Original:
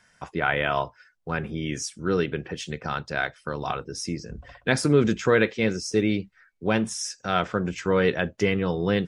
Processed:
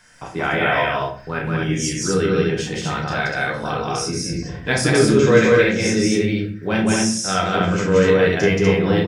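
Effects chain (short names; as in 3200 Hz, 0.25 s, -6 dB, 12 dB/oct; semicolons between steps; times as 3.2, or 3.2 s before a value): high shelf 4100 Hz +5 dB; in parallel at +1.5 dB: compressor, threshold -48 dBFS, peak gain reduction 30.5 dB; on the sum: crackle 23/s -51 dBFS; on a send: loudspeakers at several distances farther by 11 m -3 dB, 61 m -1 dB, 84 m -1 dB; on the sum: shoebox room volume 41 m³, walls mixed, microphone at 0.48 m; gain -1.5 dB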